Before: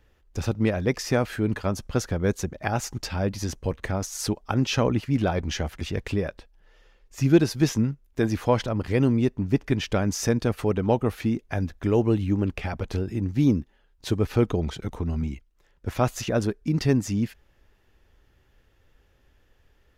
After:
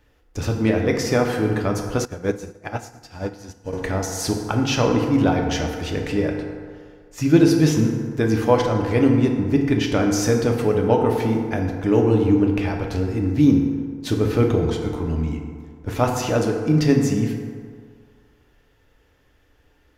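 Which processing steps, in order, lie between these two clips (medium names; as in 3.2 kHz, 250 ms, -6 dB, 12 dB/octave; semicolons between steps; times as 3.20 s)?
bass shelf 110 Hz -4 dB; FDN reverb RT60 2 s, low-frequency decay 0.8×, high-frequency decay 0.45×, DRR 1 dB; 2.05–3.73 s: upward expansion 2.5:1, over -32 dBFS; trim +2.5 dB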